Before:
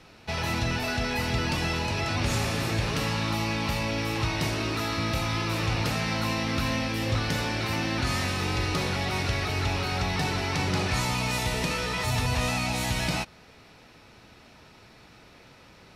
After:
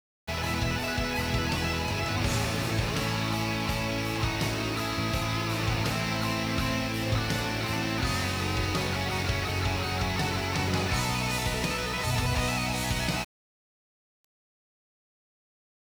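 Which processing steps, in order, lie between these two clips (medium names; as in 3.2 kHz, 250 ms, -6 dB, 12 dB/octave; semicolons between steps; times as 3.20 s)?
crossover distortion -44 dBFS; word length cut 8-bit, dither none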